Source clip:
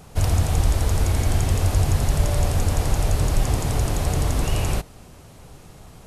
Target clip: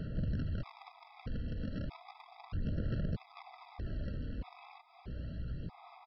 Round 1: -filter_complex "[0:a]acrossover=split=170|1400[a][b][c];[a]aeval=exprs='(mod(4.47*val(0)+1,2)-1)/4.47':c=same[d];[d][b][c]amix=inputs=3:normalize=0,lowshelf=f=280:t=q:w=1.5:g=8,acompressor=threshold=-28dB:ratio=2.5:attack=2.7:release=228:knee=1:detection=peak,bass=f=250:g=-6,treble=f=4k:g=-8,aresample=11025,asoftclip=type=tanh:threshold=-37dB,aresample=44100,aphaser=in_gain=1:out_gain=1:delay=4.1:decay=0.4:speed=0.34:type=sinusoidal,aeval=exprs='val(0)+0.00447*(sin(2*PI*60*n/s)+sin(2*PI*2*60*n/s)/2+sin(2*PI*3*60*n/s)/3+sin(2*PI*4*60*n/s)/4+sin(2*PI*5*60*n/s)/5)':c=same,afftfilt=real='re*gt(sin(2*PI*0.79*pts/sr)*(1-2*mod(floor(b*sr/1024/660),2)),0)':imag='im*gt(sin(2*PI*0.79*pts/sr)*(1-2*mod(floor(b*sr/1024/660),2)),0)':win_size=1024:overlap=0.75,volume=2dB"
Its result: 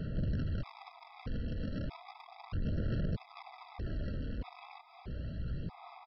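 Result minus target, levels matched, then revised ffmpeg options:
compressor: peak gain reduction -5.5 dB
-filter_complex "[0:a]acrossover=split=170|1400[a][b][c];[a]aeval=exprs='(mod(4.47*val(0)+1,2)-1)/4.47':c=same[d];[d][b][c]amix=inputs=3:normalize=0,lowshelf=f=280:t=q:w=1.5:g=8,acompressor=threshold=-37dB:ratio=2.5:attack=2.7:release=228:knee=1:detection=peak,bass=f=250:g=-6,treble=f=4k:g=-8,aresample=11025,asoftclip=type=tanh:threshold=-37dB,aresample=44100,aphaser=in_gain=1:out_gain=1:delay=4.1:decay=0.4:speed=0.34:type=sinusoidal,aeval=exprs='val(0)+0.00447*(sin(2*PI*60*n/s)+sin(2*PI*2*60*n/s)/2+sin(2*PI*3*60*n/s)/3+sin(2*PI*4*60*n/s)/4+sin(2*PI*5*60*n/s)/5)':c=same,afftfilt=real='re*gt(sin(2*PI*0.79*pts/sr)*(1-2*mod(floor(b*sr/1024/660),2)),0)':imag='im*gt(sin(2*PI*0.79*pts/sr)*(1-2*mod(floor(b*sr/1024/660),2)),0)':win_size=1024:overlap=0.75,volume=2dB"

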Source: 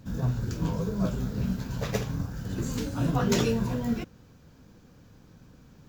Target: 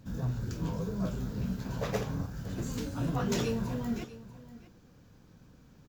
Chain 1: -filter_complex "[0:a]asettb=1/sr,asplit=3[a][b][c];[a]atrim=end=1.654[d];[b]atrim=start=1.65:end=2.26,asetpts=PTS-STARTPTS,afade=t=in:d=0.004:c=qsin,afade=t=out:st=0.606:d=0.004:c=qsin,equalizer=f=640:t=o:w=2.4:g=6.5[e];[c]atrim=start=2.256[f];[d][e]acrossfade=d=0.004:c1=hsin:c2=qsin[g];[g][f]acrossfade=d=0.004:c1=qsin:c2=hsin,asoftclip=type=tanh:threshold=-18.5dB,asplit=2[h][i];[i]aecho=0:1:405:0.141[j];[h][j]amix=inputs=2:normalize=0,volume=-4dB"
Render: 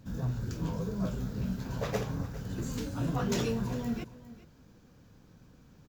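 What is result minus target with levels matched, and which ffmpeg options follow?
echo 0.237 s early
-filter_complex "[0:a]asettb=1/sr,asplit=3[a][b][c];[a]atrim=end=1.654[d];[b]atrim=start=1.65:end=2.26,asetpts=PTS-STARTPTS,afade=t=in:d=0.004:c=qsin,afade=t=out:st=0.606:d=0.004:c=qsin,equalizer=f=640:t=o:w=2.4:g=6.5[e];[c]atrim=start=2.256[f];[d][e]acrossfade=d=0.004:c1=hsin:c2=qsin[g];[g][f]acrossfade=d=0.004:c1=qsin:c2=hsin,asoftclip=type=tanh:threshold=-18.5dB,asplit=2[h][i];[i]aecho=0:1:642:0.141[j];[h][j]amix=inputs=2:normalize=0,volume=-4dB"

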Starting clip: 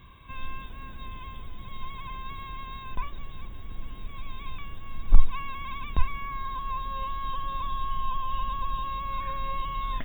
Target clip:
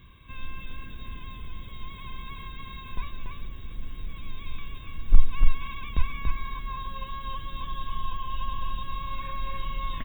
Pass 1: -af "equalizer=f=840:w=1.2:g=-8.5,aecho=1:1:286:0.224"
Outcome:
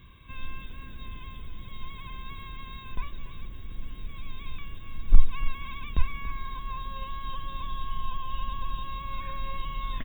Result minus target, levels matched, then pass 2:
echo-to-direct -9.5 dB
-af "equalizer=f=840:w=1.2:g=-8.5,aecho=1:1:286:0.668"

